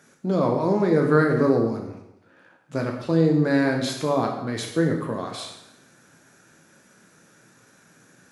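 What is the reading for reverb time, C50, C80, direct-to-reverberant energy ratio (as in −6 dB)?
0.85 s, 5.5 dB, 7.5 dB, 1.5 dB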